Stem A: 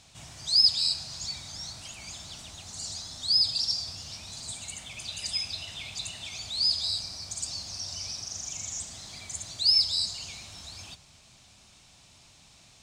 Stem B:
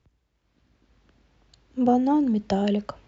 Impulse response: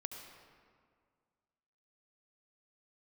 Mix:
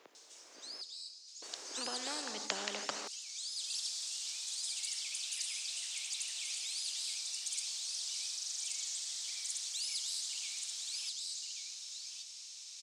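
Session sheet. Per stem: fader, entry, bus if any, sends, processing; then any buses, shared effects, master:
-6.0 dB, 0.15 s, no send, echo send -9 dB, band-pass 5600 Hz, Q 1.7; tilt +2 dB/oct; auto duck -23 dB, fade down 0.60 s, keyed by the second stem
+0.5 dB, 0.00 s, muted 0.82–1.42, send -9.5 dB, no echo send, low shelf 320 Hz +7.5 dB; compressor, threshold -21 dBFS, peak gain reduction 9.5 dB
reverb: on, RT60 2.0 s, pre-delay 65 ms
echo: echo 1.129 s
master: HPF 430 Hz 24 dB/oct; spectral compressor 4:1

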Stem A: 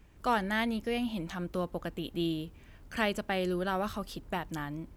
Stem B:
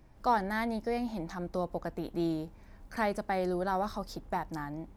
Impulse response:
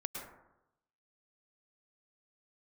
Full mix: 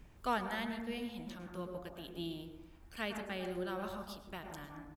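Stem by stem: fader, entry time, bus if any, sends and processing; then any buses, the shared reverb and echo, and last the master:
-2.0 dB, 0.00 s, send -10 dB, auto duck -10 dB, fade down 0.60 s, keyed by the second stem
-7.0 dB, 0.3 ms, polarity flipped, no send, compressor, threshold -37 dBFS, peak gain reduction 14 dB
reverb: on, RT60 0.90 s, pre-delay 97 ms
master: dry

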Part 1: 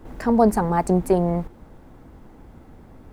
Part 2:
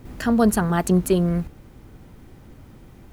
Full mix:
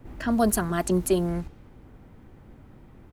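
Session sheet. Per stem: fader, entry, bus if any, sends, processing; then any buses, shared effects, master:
-12.5 dB, 0.00 s, no send, dry
-4.5 dB, 2.6 ms, no send, low-pass opened by the level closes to 2100 Hz, open at -15 dBFS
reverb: off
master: high shelf 5300 Hz +7.5 dB

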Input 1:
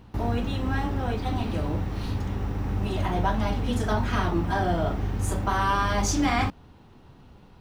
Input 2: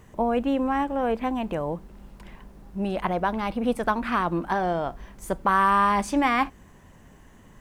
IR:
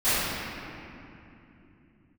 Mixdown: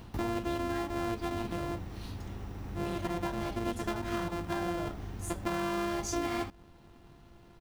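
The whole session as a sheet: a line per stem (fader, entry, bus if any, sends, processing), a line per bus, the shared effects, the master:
+2.5 dB, 0.00 s, no send, high shelf 3800 Hz +8.5 dB; compressor 1.5:1, threshold -35 dBFS, peak gain reduction 6.5 dB; auto duck -11 dB, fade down 0.30 s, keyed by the second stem
-6.5 dB, 0.7 ms, no send, sample sorter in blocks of 128 samples; high shelf 2400 Hz -10.5 dB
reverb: off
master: compressor, threshold -29 dBFS, peak gain reduction 6 dB

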